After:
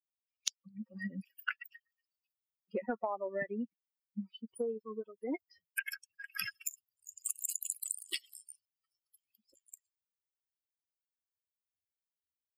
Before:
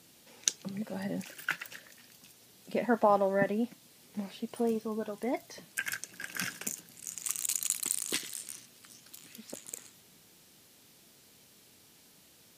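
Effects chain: per-bin expansion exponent 3; HPF 360 Hz 6 dB/oct; compressor 12:1, threshold -44 dBFS, peak gain reduction 21.5 dB; gain +11.5 dB

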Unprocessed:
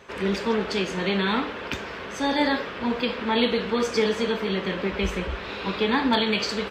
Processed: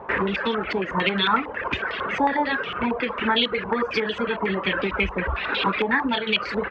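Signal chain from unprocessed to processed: reverb removal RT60 1.3 s; compressor 16:1, threshold -29 dBFS, peak gain reduction 12 dB; hard clip -25 dBFS, distortion -24 dB; stepped low-pass 11 Hz 900–3300 Hz; gain +7.5 dB

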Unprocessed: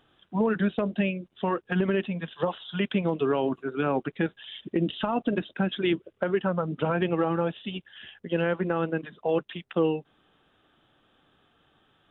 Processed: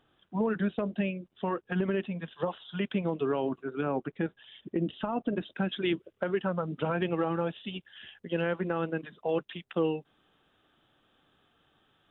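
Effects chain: high shelf 2800 Hz -4.5 dB, from 3.81 s -11.5 dB, from 5.41 s +2.5 dB; gain -4 dB

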